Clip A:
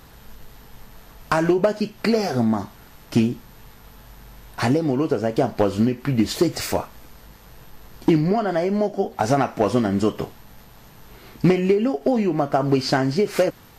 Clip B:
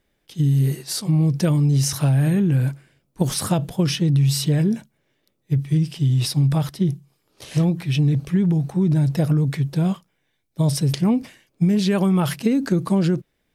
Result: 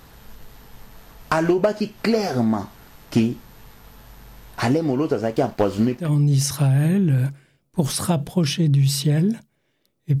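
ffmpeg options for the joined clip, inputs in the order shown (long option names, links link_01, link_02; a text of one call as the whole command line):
ffmpeg -i cue0.wav -i cue1.wav -filter_complex "[0:a]asettb=1/sr,asplit=3[link_01][link_02][link_03];[link_01]atrim=end=5.214[link_04];[link_02]atrim=start=5.21:end=6.12,asetpts=PTS-STARTPTS,afade=type=in:duration=0.004:curve=qsin,afade=type=out:start_time=0.906:duration=0.004:curve=qsin,aeval=exprs='sgn(val(0))*max(abs(val(0))-0.00596,0)':channel_layout=same[link_05];[link_03]atrim=start=6.116[link_06];[link_04][link_05]acrossfade=duration=0.004:curve1=hsin:curve2=qsin[link_07];[link_07][link_06]acrossfade=duration=0.004:curve1=qsin:curve2=hsin,apad=whole_dur=10.2,atrim=end=10.2,atrim=end=6.12,asetpts=PTS-STARTPTS[link_08];[1:a]atrim=start=1.4:end=5.62,asetpts=PTS-STARTPTS[link_09];[link_08][link_09]acrossfade=duration=0.14:curve1=tri:curve2=tri" out.wav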